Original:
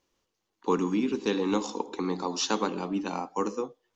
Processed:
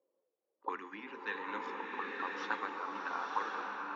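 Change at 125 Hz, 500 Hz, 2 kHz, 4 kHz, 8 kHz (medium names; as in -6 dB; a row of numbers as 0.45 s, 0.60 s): under -25 dB, -15.5 dB, +2.5 dB, -15.0 dB, no reading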